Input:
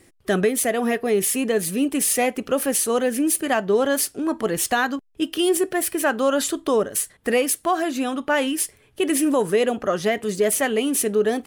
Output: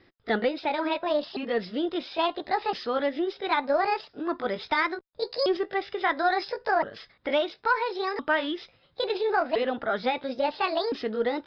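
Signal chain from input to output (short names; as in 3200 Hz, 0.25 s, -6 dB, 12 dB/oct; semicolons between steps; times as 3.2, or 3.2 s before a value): repeated pitch sweeps +8 st, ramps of 1.365 s; rippled Chebyshev low-pass 5200 Hz, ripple 6 dB; added harmonics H 2 -26 dB, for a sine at -11 dBFS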